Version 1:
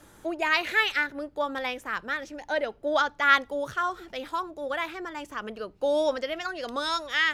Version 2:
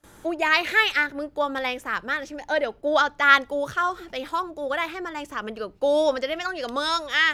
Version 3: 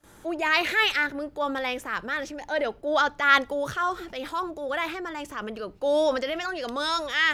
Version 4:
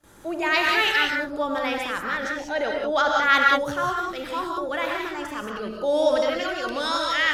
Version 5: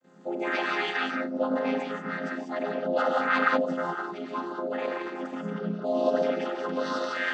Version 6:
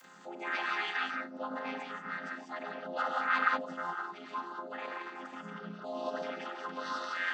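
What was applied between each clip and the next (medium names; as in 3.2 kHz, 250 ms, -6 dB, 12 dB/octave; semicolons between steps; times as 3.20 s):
gate with hold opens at -44 dBFS; trim +4 dB
transient shaper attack -4 dB, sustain +4 dB; trim -1.5 dB
gated-style reverb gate 210 ms rising, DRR 0.5 dB
vocoder on a held chord minor triad, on F3; trim -3.5 dB
resonant low shelf 730 Hz -7.5 dB, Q 1.5; upward compressor, threshold -48 dBFS; tape noise reduction on one side only encoder only; trim -5.5 dB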